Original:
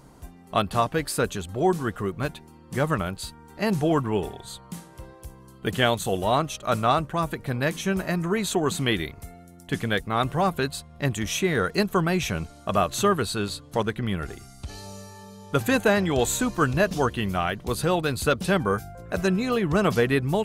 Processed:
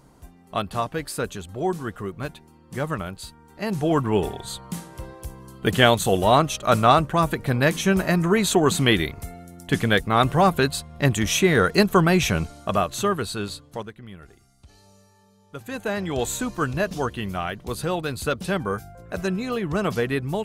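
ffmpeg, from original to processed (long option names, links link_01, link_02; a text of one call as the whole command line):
ffmpeg -i in.wav -af "volume=17dB,afade=type=in:start_time=3.69:duration=0.61:silence=0.375837,afade=type=out:start_time=12.41:duration=0.47:silence=0.446684,afade=type=out:start_time=13.52:duration=0.41:silence=0.237137,afade=type=in:start_time=15.64:duration=0.53:silence=0.266073" out.wav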